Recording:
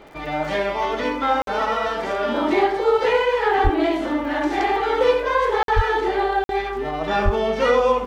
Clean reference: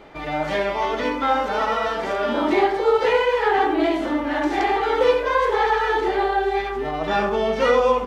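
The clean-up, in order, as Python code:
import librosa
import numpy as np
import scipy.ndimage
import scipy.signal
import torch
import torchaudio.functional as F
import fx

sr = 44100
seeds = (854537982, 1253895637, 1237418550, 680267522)

y = fx.fix_declick_ar(x, sr, threshold=6.5)
y = fx.fix_deplosive(y, sr, at_s=(3.63, 5.75, 7.24))
y = fx.fix_interpolate(y, sr, at_s=(1.42, 5.63, 6.44), length_ms=52.0)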